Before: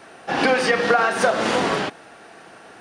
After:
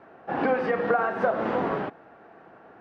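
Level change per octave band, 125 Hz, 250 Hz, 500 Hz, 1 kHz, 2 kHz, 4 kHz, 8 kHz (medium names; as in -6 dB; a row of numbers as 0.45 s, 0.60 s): -4.5 dB, -4.5 dB, -4.5 dB, -6.0 dB, -10.5 dB, -21.5 dB, under -30 dB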